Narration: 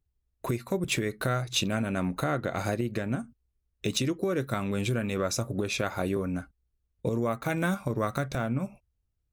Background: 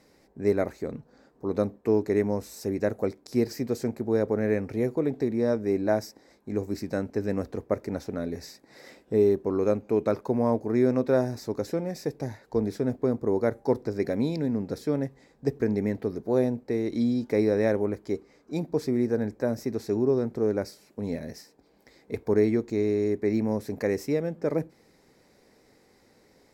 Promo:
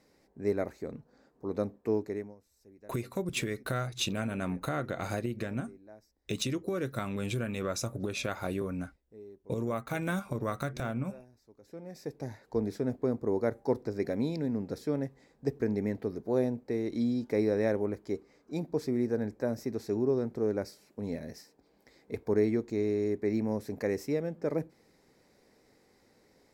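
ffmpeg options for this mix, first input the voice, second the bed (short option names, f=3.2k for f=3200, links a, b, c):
-filter_complex "[0:a]adelay=2450,volume=-4.5dB[a];[1:a]volume=17.5dB,afade=t=out:st=1.93:d=0.42:silence=0.0794328,afade=t=in:st=11.61:d=0.77:silence=0.0668344[b];[a][b]amix=inputs=2:normalize=0"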